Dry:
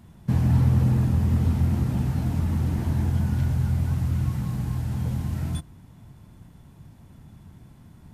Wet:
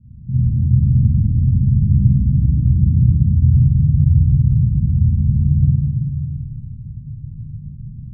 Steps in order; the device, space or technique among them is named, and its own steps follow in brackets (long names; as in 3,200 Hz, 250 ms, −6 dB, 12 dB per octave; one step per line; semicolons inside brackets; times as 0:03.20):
0:02.79–0:03.72: Butterworth low-pass 2,000 Hz 96 dB per octave
club heard from the street (brickwall limiter −19 dBFS, peak gain reduction 9 dB; low-pass filter 170 Hz 24 dB per octave; convolution reverb RT60 1.2 s, pre-delay 38 ms, DRR −8 dB)
comb and all-pass reverb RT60 2.5 s, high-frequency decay 0.85×, pre-delay 80 ms, DRR 2.5 dB
level +4.5 dB